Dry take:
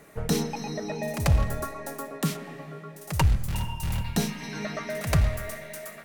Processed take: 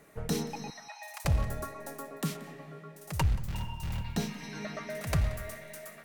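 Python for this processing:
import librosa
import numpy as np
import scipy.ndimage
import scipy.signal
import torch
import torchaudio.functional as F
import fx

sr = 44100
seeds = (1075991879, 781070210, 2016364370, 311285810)

p1 = fx.steep_highpass(x, sr, hz=720.0, slope=72, at=(0.7, 1.25))
p2 = fx.peak_eq(p1, sr, hz=11000.0, db=-8.0, octaves=0.89, at=(3.23, 4.31))
p3 = p2 + fx.echo_single(p2, sr, ms=180, db=-20.0, dry=0)
y = p3 * 10.0 ** (-6.0 / 20.0)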